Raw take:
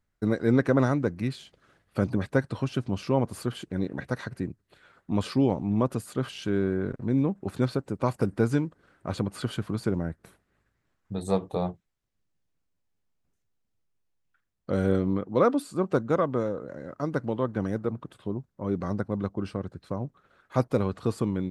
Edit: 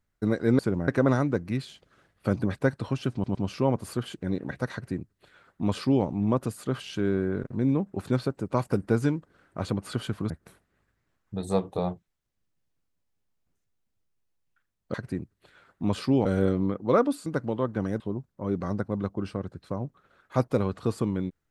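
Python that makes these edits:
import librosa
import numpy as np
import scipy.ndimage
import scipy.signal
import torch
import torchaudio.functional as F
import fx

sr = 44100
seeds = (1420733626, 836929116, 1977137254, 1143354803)

y = fx.edit(x, sr, fx.stutter(start_s=2.84, slice_s=0.11, count=3),
    fx.duplicate(start_s=4.22, length_s=1.31, to_s=14.72),
    fx.move(start_s=9.79, length_s=0.29, to_s=0.59),
    fx.cut(start_s=15.73, length_s=1.33),
    fx.cut(start_s=17.8, length_s=0.4), tone=tone)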